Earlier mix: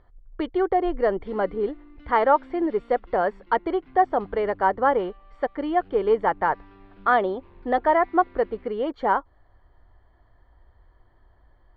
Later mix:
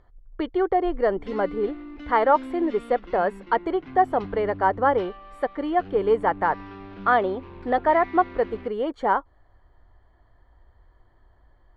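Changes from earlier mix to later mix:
background +11.0 dB
master: remove low-pass filter 5,000 Hz 24 dB per octave

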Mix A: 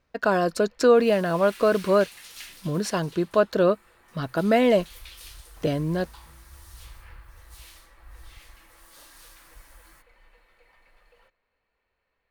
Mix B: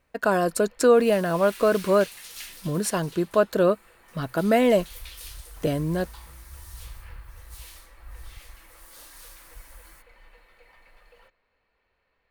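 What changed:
speech: add high shelf with overshoot 6,900 Hz +8 dB, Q 1.5
first sound +4.5 dB
second sound: add high-shelf EQ 7,200 Hz +6.5 dB

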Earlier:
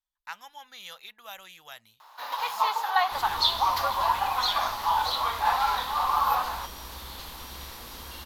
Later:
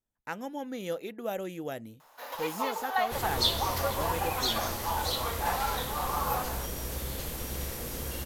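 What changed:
speech: remove guitar amp tone stack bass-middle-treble 10-0-10
second sound +6.0 dB
master: add graphic EQ with 10 bands 125 Hz +8 dB, 500 Hz +7 dB, 1,000 Hz −11 dB, 4,000 Hz −10 dB, 8,000 Hz +4 dB

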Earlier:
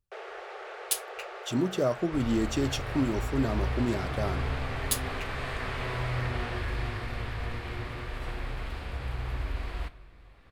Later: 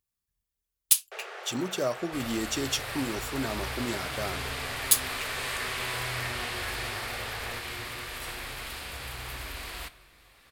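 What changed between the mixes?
first sound: entry +1.00 s
second sound: remove low-pass filter 2,800 Hz 6 dB per octave
master: add spectral tilt +2.5 dB per octave

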